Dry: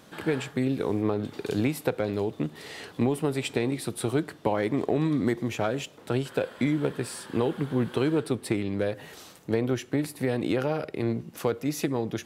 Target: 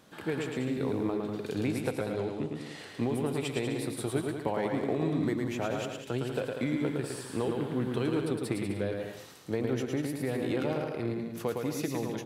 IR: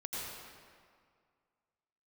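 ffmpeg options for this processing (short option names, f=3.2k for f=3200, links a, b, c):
-filter_complex "[0:a]asettb=1/sr,asplit=3[a][b][c];[a]atrim=end=1.554[d];[b]atrim=start=1.55:end=2.79,asetpts=PTS-STARTPTS,afade=t=in:d=0.004:c=qsin,afade=t=out:st=1.236:d=0.004:c=qsin,lowpass=f=11k:w=0.5412,lowpass=f=11k:w=1.3066[e];[c]atrim=start=2.786[f];[d][e]acrossfade=d=0.004:c1=hsin:c2=qsin[g];[g][f]acrossfade=d=0.004:c1=qsin:c2=hsin,aecho=1:1:110|192.5|254.4|300.8|335.6:0.631|0.398|0.251|0.158|0.1,volume=-6dB"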